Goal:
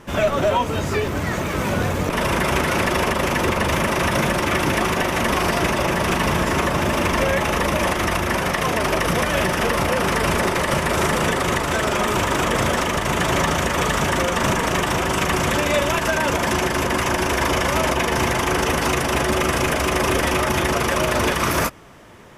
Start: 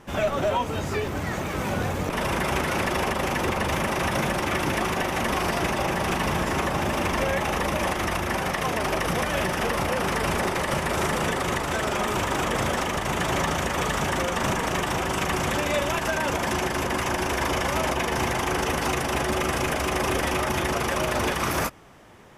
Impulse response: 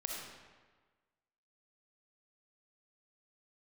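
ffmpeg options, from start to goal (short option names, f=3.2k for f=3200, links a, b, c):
-af "bandreject=f=790:w=12,volume=5.5dB"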